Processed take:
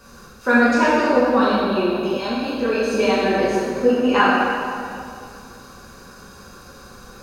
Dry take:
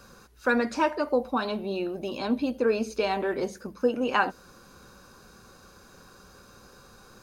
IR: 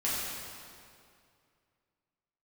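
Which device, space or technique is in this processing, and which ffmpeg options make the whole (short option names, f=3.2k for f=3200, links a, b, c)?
stairwell: -filter_complex "[1:a]atrim=start_sample=2205[a];[0:a][a]afir=irnorm=-1:irlink=0,asettb=1/sr,asplit=3[b][c][d];[b]atrim=end=2.174[e];[c]atrim=start=2.17:end=2.94,asetpts=PTS-STARTPTS,afade=t=in:d=0.004:c=qsin,afade=t=out:st=0.766:d=0.004:c=qsin,equalizer=f=230:w=0.72:g=-9[f];[d]atrim=start=2.936[g];[e][f]acrossfade=d=0.004:c1=hsin:c2=qsin[h];[h][g]acrossfade=d=0.004:c1=qsin:c2=hsin,volume=2dB"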